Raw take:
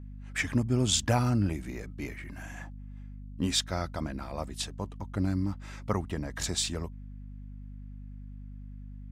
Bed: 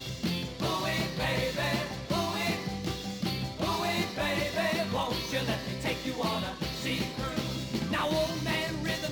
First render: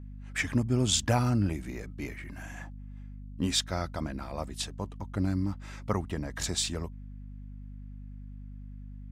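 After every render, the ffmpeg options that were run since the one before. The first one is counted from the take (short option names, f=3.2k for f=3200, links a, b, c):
-af anull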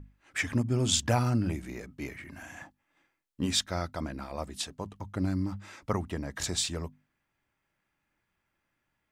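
-af "bandreject=f=50:t=h:w=6,bandreject=f=100:t=h:w=6,bandreject=f=150:t=h:w=6,bandreject=f=200:t=h:w=6,bandreject=f=250:t=h:w=6"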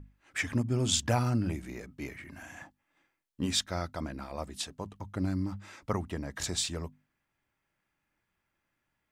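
-af "volume=-1.5dB"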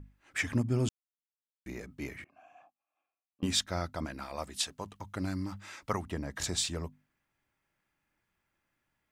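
-filter_complex "[0:a]asettb=1/sr,asplit=3[a][b][c];[a]atrim=end=2.244[d];[b]atrim=start=2.24:end=3.43,asetpts=PTS-STARTPTS,afade=t=in:d=0.004:c=qsin,afade=t=out:st=1.186:d=0.004:c=qsin,asplit=3[e][f][g];[e]bandpass=f=730:t=q:w=8,volume=0dB[h];[f]bandpass=f=1.09k:t=q:w=8,volume=-6dB[i];[g]bandpass=f=2.44k:t=q:w=8,volume=-9dB[j];[h][i][j]amix=inputs=3:normalize=0[k];[c]atrim=start=3.426[l];[d][k]acrossfade=d=0.004:c1=hsin:c2=qsin[m];[m][l]acrossfade=d=0.004:c1=qsin:c2=hsin,asettb=1/sr,asplit=3[n][o][p];[n]atrim=end=4.054[q];[o]atrim=start=4.05:end=6.06,asetpts=PTS-STARTPTS,afade=t=in:d=0.004:c=qsin,afade=t=out:st=2.006:d=0.004:c=qsin,tiltshelf=f=710:g=-4.5[r];[p]atrim=start=6.056[s];[q][r]acrossfade=d=0.004:c1=hsin:c2=qsin[t];[t][s]acrossfade=d=0.004:c1=qsin:c2=hsin,asplit=3[u][v][w];[u]atrim=end=0.89,asetpts=PTS-STARTPTS,afade=t=out:st=0.886:d=0.004:c=hsin[x];[v]atrim=start=0.89:end=1.66,asetpts=PTS-STARTPTS,volume=0[y];[w]atrim=start=1.66,asetpts=PTS-STARTPTS,afade=t=in:d=0.004:c=hsin[z];[x][y][z]concat=n=3:v=0:a=1"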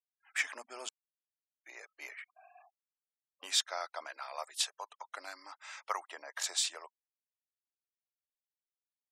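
-af "highpass=f=650:w=0.5412,highpass=f=650:w=1.3066,afftfilt=real='re*gte(hypot(re,im),0.00141)':imag='im*gte(hypot(re,im),0.00141)':win_size=1024:overlap=0.75"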